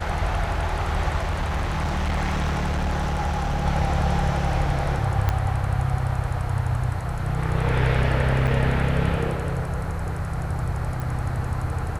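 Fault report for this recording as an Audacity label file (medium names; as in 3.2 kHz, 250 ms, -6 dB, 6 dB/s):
1.180000	3.660000	clipped -20.5 dBFS
5.290000	5.290000	pop -9 dBFS
8.470000	8.480000	dropout 6.1 ms
11.000000	11.000000	pop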